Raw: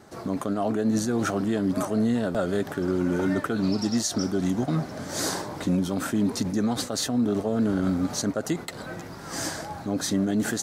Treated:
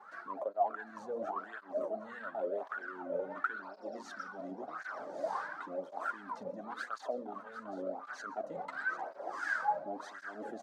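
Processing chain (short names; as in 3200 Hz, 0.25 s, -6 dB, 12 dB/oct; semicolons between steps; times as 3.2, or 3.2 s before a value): Bessel high-pass 160 Hz, order 8; notches 60/120/180/240 Hz; reverse; compressor 6:1, threshold -33 dBFS, peak gain reduction 11.5 dB; reverse; wavefolder -28 dBFS; wah 1.5 Hz 540–1600 Hz, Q 9.2; echo 0.753 s -13 dB; on a send at -19 dB: reverb RT60 0.50 s, pre-delay 0.116 s; on the sum: tape flanging out of phase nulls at 0.93 Hz, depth 3.2 ms; gain +15.5 dB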